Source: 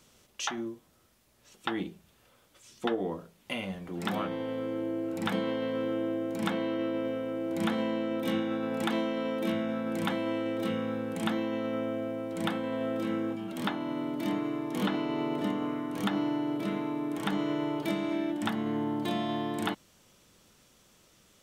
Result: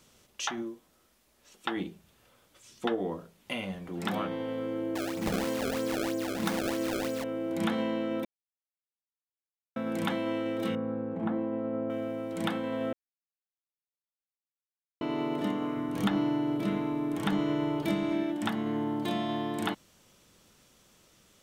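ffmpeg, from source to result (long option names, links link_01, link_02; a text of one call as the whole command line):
ffmpeg -i in.wav -filter_complex "[0:a]asettb=1/sr,asplit=3[link_01][link_02][link_03];[link_01]atrim=end=0.624[link_04];[link_02]atrim=start=0.62:end=1.77,asetpts=PTS-STARTPTS,afade=type=in:duration=0.004:curve=qsin,afade=type=out:start_time=1.146:duration=0.004:curve=qsin,equalizer=frequency=110:width=1.5:gain=-10.5[link_05];[link_03]atrim=start=1.766[link_06];[link_04][link_05]acrossfade=duration=0.004:curve1=hsin:curve2=qsin[link_07];[link_07][link_06]acrossfade=duration=0.004:curve1=qsin:curve2=hsin,asettb=1/sr,asplit=3[link_08][link_09][link_10];[link_08]atrim=end=4.954[link_11];[link_09]atrim=start=4.95:end=7.24,asetpts=PTS-STARTPTS,afade=type=in:duration=0.004:curve=qsin,afade=type=out:start_time=2.286:duration=0.004:curve=qsin,acrusher=samples=27:mix=1:aa=0.000001:lfo=1:lforange=43.2:lforate=3.1[link_12];[link_10]atrim=start=7.236[link_13];[link_11][link_12]acrossfade=duration=0.004:curve1=hsin:curve2=qsin[link_14];[link_14][link_13]acrossfade=duration=0.004:curve1=qsin:curve2=hsin,asettb=1/sr,asplit=3[link_15][link_16][link_17];[link_15]atrim=end=10.754[link_18];[link_16]atrim=start=10.75:end=11.9,asetpts=PTS-STARTPTS,afade=type=in:duration=0.004:curve=qsin,afade=type=out:start_time=1.146:duration=0.004:curve=qsin,lowpass=1000[link_19];[link_17]atrim=start=11.896[link_20];[link_18][link_19]acrossfade=duration=0.004:curve1=hsin:curve2=qsin[link_21];[link_21][link_20]acrossfade=duration=0.004:curve1=qsin:curve2=hsin,asettb=1/sr,asplit=3[link_22][link_23][link_24];[link_22]atrim=end=15.774[link_25];[link_23]atrim=start=15.77:end=18.23,asetpts=PTS-STARTPTS,afade=type=in:duration=0.004:curve=qsin,afade=type=out:start_time=2.456:duration=0.004:curve=qsin,lowshelf=frequency=120:gain=12[link_26];[link_24]atrim=start=18.226[link_27];[link_25][link_26]acrossfade=duration=0.004:curve1=hsin:curve2=qsin[link_28];[link_28][link_27]acrossfade=duration=0.004:curve1=qsin:curve2=hsin,asplit=5[link_29][link_30][link_31][link_32][link_33];[link_29]atrim=end=8.25,asetpts=PTS-STARTPTS,afade=type=out:start_time=8.246:duration=0.004:curve=hsin[link_34];[link_30]atrim=start=8.25:end=9.76,asetpts=PTS-STARTPTS,volume=0[link_35];[link_31]atrim=start=9.76:end=12.93,asetpts=PTS-STARTPTS,afade=type=in:duration=0.004:curve=hsin,afade=type=out:start_time=3.166:duration=0.004:curve=hsin[link_36];[link_32]atrim=start=12.93:end=15.01,asetpts=PTS-STARTPTS,volume=0[link_37];[link_33]atrim=start=15.01,asetpts=PTS-STARTPTS,afade=type=in:duration=0.004:curve=hsin[link_38];[link_34][link_35][link_36][link_37][link_38]concat=n=5:v=0:a=1" out.wav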